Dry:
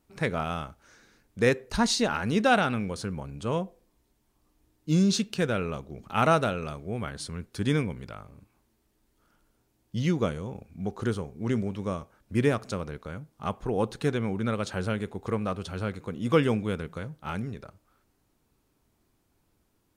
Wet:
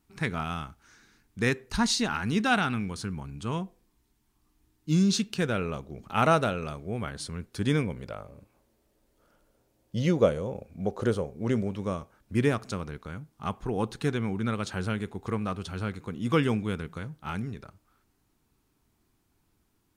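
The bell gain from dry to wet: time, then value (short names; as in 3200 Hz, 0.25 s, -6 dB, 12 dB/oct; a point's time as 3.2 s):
bell 550 Hz 0.59 oct
4.96 s -12.5 dB
5.63 s -0.5 dB
7.77 s -0.5 dB
8.19 s +10.5 dB
11.19 s +10.5 dB
11.78 s +1 dB
12.91 s -6.5 dB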